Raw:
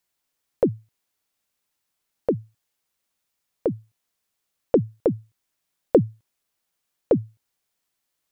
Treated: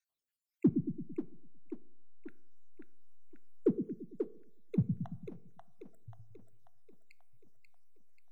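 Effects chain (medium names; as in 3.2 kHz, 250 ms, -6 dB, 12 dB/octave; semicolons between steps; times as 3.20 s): random holes in the spectrogram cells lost 72%; spectral noise reduction 8 dB; in parallel at -7 dB: hysteresis with a dead band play -24.5 dBFS; 0.68–2.29 s: on the sum: distance through air 390 m; two-band feedback delay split 330 Hz, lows 112 ms, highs 537 ms, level -5 dB; reverberation RT60 0.65 s, pre-delay 3 ms, DRR 16.5 dB; trim -5 dB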